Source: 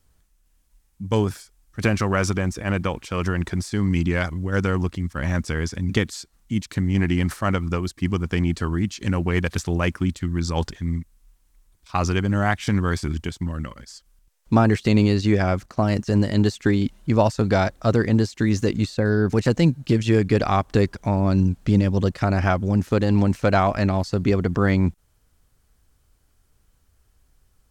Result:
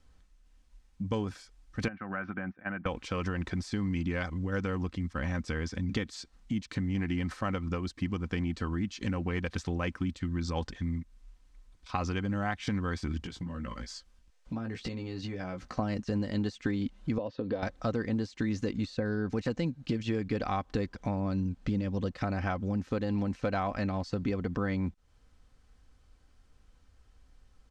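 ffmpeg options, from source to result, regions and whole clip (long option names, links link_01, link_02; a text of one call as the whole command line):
ffmpeg -i in.wav -filter_complex "[0:a]asettb=1/sr,asplit=3[link_01][link_02][link_03];[link_01]atrim=end=1.884[link_04];[link_02]atrim=start=1.88:end=2.86,asetpts=PTS-STARTPTS,afade=type=in:duration=0.004:curve=qsin,afade=type=out:start_time=0.976:duration=0.004:curve=qsin,agate=range=-33dB:threshold=-20dB:ratio=3:release=100:detection=peak,acompressor=threshold=-28dB:ratio=6:attack=3.2:release=140:knee=1:detection=peak,highpass=160,equalizer=frequency=190:width_type=q:width=4:gain=3,equalizer=frequency=460:width_type=q:width=4:gain=-9,equalizer=frequency=720:width_type=q:width=4:gain=4,equalizer=frequency=1000:width_type=q:width=4:gain=-3,equalizer=frequency=1500:width_type=q:width=4:gain=9,lowpass=frequency=2400:width=0.5412,lowpass=frequency=2400:width=1.3066[link_05];[link_03]atrim=start=2.856[link_06];[link_04][link_05]acrossfade=duration=0.004:curve1=hsin:curve2=qsin[link_07];[link_07][link_06]acrossfade=duration=0.004:curve1=qsin:curve2=hsin,asettb=1/sr,asplit=3[link_08][link_09][link_10];[link_08]atrim=end=13.204[link_11];[link_09]atrim=start=13.2:end=15.79,asetpts=PTS-STARTPTS,afade=type=in:duration=0.004:curve=qsin,afade=type=out:start_time=2.586:duration=0.004:curve=qsin,acompressor=threshold=-33dB:ratio=6:attack=3.2:release=140:knee=1:detection=peak,asplit=2[link_12][link_13];[link_13]adelay=17,volume=-5dB[link_14];[link_12][link_14]amix=inputs=2:normalize=0,atrim=end_sample=114219[link_15];[link_10]atrim=start=15.786[link_16];[link_11][link_15]acrossfade=duration=0.004:curve1=hsin:curve2=qsin[link_17];[link_17][link_16]acrossfade=duration=0.004:curve1=qsin:curve2=hsin,asettb=1/sr,asplit=3[link_18][link_19][link_20];[link_18]atrim=end=17.184[link_21];[link_19]atrim=start=17.18:end=17.63,asetpts=PTS-STARTPTS,afade=type=in:duration=0.004:curve=qsin,afade=type=out:start_time=0.446:duration=0.004:curve=qsin,acompressor=threshold=-22dB:ratio=4:attack=3.2:release=140:knee=1:detection=peak,highpass=130,equalizer=frequency=170:width_type=q:width=4:gain=-8,equalizer=frequency=300:width_type=q:width=4:gain=3,equalizer=frequency=500:width_type=q:width=4:gain=8,equalizer=frequency=800:width_type=q:width=4:gain=-7,equalizer=frequency=1400:width_type=q:width=4:gain=-9,equalizer=frequency=2200:width_type=q:width=4:gain=-10,lowpass=frequency=3700:width=0.5412,lowpass=frequency=3700:width=1.3066[link_22];[link_20]atrim=start=17.626[link_23];[link_21][link_22]acrossfade=duration=0.004:curve1=hsin:curve2=qsin[link_24];[link_24][link_23]acrossfade=duration=0.004:curve1=qsin:curve2=hsin,lowpass=5300,aecho=1:1:3.9:0.35,acompressor=threshold=-32dB:ratio=3" out.wav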